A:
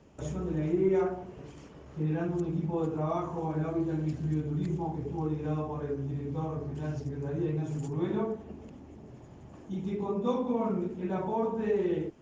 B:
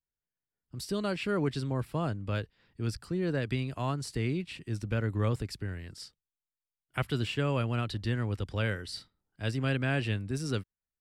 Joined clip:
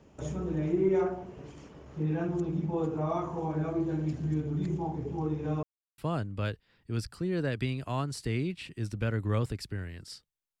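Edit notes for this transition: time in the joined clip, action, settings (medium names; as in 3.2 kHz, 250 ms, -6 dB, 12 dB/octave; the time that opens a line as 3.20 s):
A
5.63–5.98 s: mute
5.98 s: go over to B from 1.88 s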